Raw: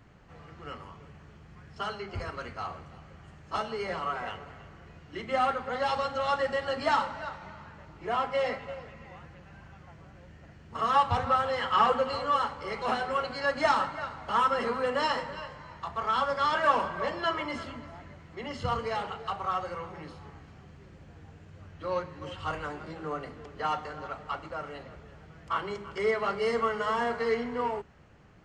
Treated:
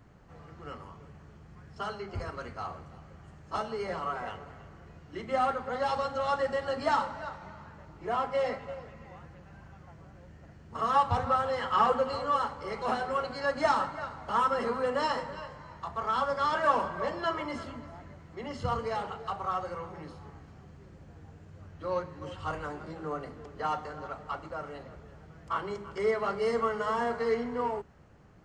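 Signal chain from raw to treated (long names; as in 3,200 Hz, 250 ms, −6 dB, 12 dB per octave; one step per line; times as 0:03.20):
parametric band 2,700 Hz −6 dB 1.5 octaves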